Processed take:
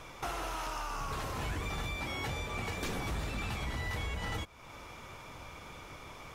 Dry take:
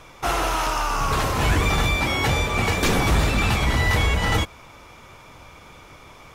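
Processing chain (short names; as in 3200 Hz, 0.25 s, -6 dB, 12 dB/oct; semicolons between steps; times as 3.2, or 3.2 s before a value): compressor 3:1, threshold -36 dBFS, peak gain reduction 15 dB; gain -3 dB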